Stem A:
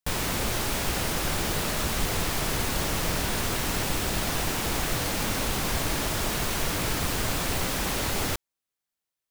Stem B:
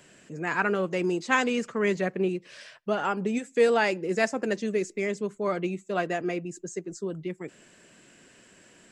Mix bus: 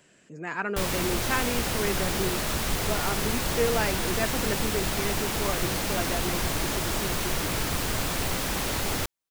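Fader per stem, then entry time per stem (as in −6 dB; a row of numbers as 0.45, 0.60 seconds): −0.5, −4.5 decibels; 0.70, 0.00 seconds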